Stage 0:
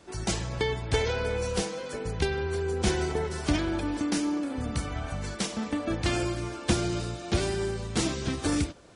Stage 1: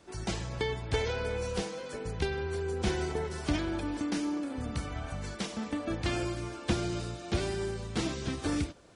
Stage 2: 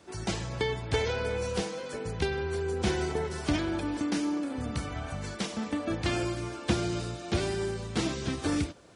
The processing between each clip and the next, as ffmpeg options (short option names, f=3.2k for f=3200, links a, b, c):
-filter_complex "[0:a]acrossover=split=5100[a][b];[b]acompressor=threshold=-42dB:ratio=4:attack=1:release=60[c];[a][c]amix=inputs=2:normalize=0,volume=-4dB"
-af "highpass=63,volume=2.5dB"